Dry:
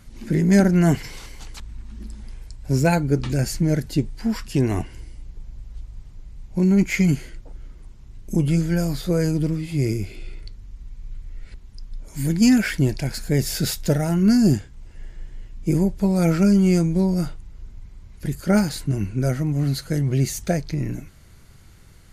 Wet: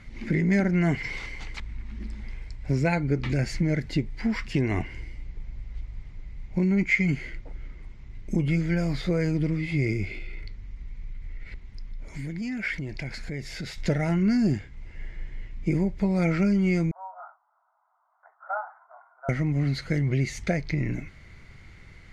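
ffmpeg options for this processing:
ffmpeg -i in.wav -filter_complex "[0:a]asettb=1/sr,asplit=3[link_01][link_02][link_03];[link_01]atrim=end=10.084[link_04];[link_02]atrim=start=10.08:end=13.78,asetpts=PTS-STARTPTS,afade=type=in:duration=0.004:curve=qsin,afade=type=out:start_time=3.696:duration=0.004:curve=qsin,acompressor=threshold=-31dB:ratio=6:attack=3.2:release=140:knee=1:detection=peak[link_05];[link_03]atrim=start=13.776[link_06];[link_04][link_05]acrossfade=duration=0.004:curve1=hsin:curve2=qsin[link_07];[link_07][link_06]acrossfade=duration=0.004:curve1=qsin:curve2=hsin,asettb=1/sr,asplit=3[link_08][link_09][link_10];[link_08]atrim=end=16.914[link_11];[link_09]atrim=start=16.91:end=19.29,asetpts=PTS-STARTPTS,afade=type=in:duration=0.004:curve=qsin,afade=type=out:start_time=2.376:duration=0.004:curve=qsin,asuperpass=centerf=970:order=12:qfactor=1.3[link_12];[link_10]atrim=start=19.286[link_13];[link_11][link_12]acrossfade=duration=0.004:curve1=hsin:curve2=qsin[link_14];[link_14][link_13]acrossfade=duration=0.004:curve1=qsin:curve2=hsin,lowpass=4400,equalizer=frequency=2100:width=4.2:gain=13,acompressor=threshold=-23dB:ratio=2.5" out.wav

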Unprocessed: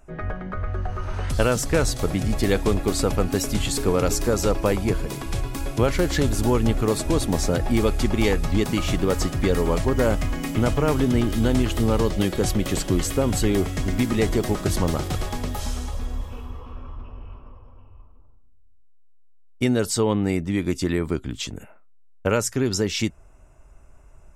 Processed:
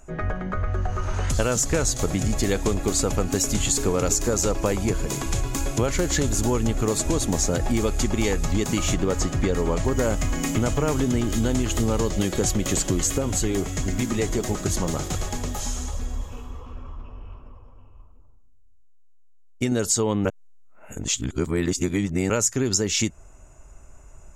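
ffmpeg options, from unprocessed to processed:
ffmpeg -i in.wav -filter_complex "[0:a]asettb=1/sr,asplit=3[link_01][link_02][link_03];[link_01]atrim=end=8.944[link_04];[link_02]atrim=start=8.94:end=9.85,asetpts=PTS-STARTPTS,afade=type=in:duration=0.004:curve=qsin,afade=type=out:start_time=0.906:duration=0.004:curve=qsin,highshelf=frequency=5900:gain=-10[link_05];[link_03]atrim=start=9.846[link_06];[link_04][link_05]acrossfade=duration=0.004:curve1=hsin:curve2=qsin[link_07];[link_07][link_06]acrossfade=duration=0.004:curve1=qsin:curve2=hsin,asettb=1/sr,asplit=3[link_08][link_09][link_10];[link_08]atrim=end=13.184[link_11];[link_09]atrim=start=13.18:end=19.72,asetpts=PTS-STARTPTS,afade=type=in:duration=0.004:curve=qsin,afade=type=out:start_time=6.536:duration=0.004:curve=qsin,flanger=delay=0.4:depth=6.8:regen=-64:speed=1.4:shape=sinusoidal[link_12];[link_10]atrim=start=19.716[link_13];[link_11][link_12]acrossfade=duration=0.004:curve1=hsin:curve2=qsin[link_14];[link_14][link_13]acrossfade=duration=0.004:curve1=qsin:curve2=hsin,asplit=3[link_15][link_16][link_17];[link_15]atrim=end=20.252[link_18];[link_16]atrim=start=20.248:end=22.302,asetpts=PTS-STARTPTS,areverse[link_19];[link_17]atrim=start=22.298[link_20];[link_18][link_19]acrossfade=duration=0.004:curve1=hsin:curve2=hsin[link_21];[link_21][link_20]acrossfade=duration=0.004:curve1=hsin:curve2=hsin,equalizer=frequency=6800:width=3.8:gain=13.5,acompressor=threshold=-23dB:ratio=3,volume=3dB" out.wav

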